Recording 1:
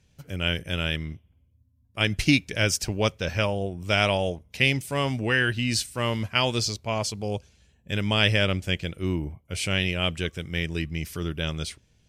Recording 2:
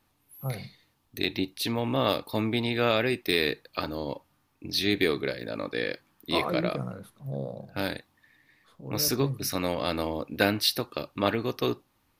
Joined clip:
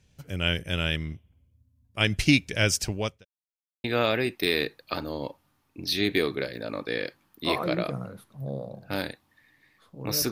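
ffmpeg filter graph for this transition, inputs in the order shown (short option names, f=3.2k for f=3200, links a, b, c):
-filter_complex "[0:a]apad=whole_dur=10.31,atrim=end=10.31,asplit=2[a][b];[a]atrim=end=3.25,asetpts=PTS-STARTPTS,afade=t=out:st=2.84:d=0.41[c];[b]atrim=start=3.25:end=3.84,asetpts=PTS-STARTPTS,volume=0[d];[1:a]atrim=start=2.7:end=9.17,asetpts=PTS-STARTPTS,afade=t=in:d=0.004:c=hsin[e];[c][d][e]concat=n=3:v=0:a=1"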